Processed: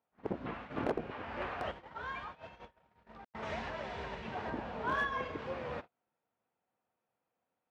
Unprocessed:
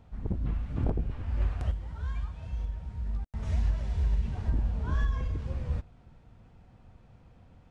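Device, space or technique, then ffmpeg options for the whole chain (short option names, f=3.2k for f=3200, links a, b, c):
walkie-talkie: -af "highpass=460,lowpass=2.9k,asoftclip=type=hard:threshold=-35dB,agate=range=-29dB:threshold=-55dB:ratio=16:detection=peak,volume=9.5dB"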